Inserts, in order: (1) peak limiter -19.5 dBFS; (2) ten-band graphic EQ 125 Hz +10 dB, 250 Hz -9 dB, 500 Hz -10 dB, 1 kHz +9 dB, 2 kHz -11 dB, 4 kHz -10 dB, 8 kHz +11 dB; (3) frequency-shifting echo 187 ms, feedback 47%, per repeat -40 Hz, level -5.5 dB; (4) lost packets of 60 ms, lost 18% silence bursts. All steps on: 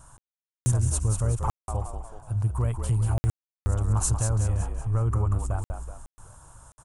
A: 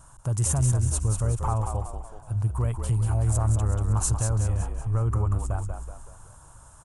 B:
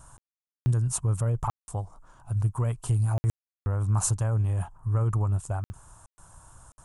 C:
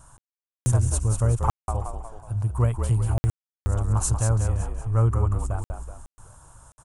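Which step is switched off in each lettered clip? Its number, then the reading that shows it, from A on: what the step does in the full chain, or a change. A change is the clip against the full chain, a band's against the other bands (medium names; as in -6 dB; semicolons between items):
4, loudness change +1.0 LU; 3, momentary loudness spread change +2 LU; 1, crest factor change +3.0 dB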